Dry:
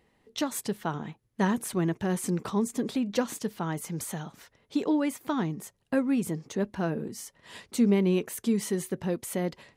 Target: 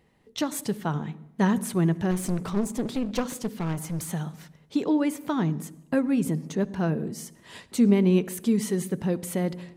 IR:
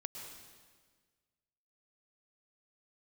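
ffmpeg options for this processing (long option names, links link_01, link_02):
-filter_complex "[0:a]equalizer=frequency=150:width=3:gain=5,asplit=2[link_01][link_02];[1:a]atrim=start_sample=2205,asetrate=83790,aresample=44100,lowshelf=frequency=490:gain=11[link_03];[link_02][link_03]afir=irnorm=-1:irlink=0,volume=-8.5dB[link_04];[link_01][link_04]amix=inputs=2:normalize=0,asettb=1/sr,asplit=3[link_05][link_06][link_07];[link_05]atrim=end=2.114[link_08];[link_06]atrim=start=2.11:end=4.12,asetpts=PTS-STARTPTS,afade=type=in:duration=0.004:curve=qsin,afade=type=out:start_time=2.006:duration=0.004:curve=qsin,aeval=exprs='clip(val(0),-1,0.0282)':channel_layout=same[link_09];[link_07]atrim=start=4.116[link_10];[link_08][link_09]acrossfade=duration=0.004:curve1=hsin:curve2=qsin[link_11];[link_11][link_10]acrossfade=duration=0.004:curve1=qsin:curve2=hsin"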